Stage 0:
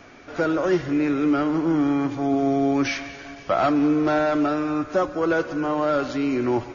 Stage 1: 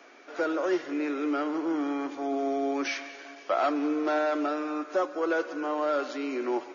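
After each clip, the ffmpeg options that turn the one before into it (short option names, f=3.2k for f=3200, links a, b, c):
-af "highpass=f=310:w=0.5412,highpass=f=310:w=1.3066,volume=-5dB"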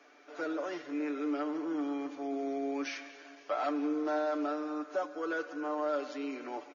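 -af "aecho=1:1:6.8:0.65,volume=-8.5dB"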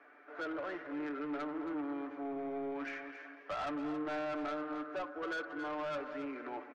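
-filter_complex "[0:a]lowpass=f=1.7k:t=q:w=1.9,asoftclip=type=tanh:threshold=-32dB,asplit=2[a][b];[b]aecho=0:1:273:0.282[c];[a][c]amix=inputs=2:normalize=0,volume=-2.5dB"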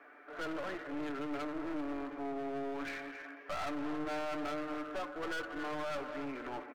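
-af "aeval=exprs='clip(val(0),-1,0.00473)':c=same,volume=3dB"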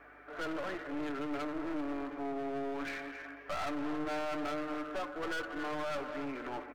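-af "aeval=exprs='val(0)+0.000316*(sin(2*PI*50*n/s)+sin(2*PI*2*50*n/s)/2+sin(2*PI*3*50*n/s)/3+sin(2*PI*4*50*n/s)/4+sin(2*PI*5*50*n/s)/5)':c=same,volume=1.5dB"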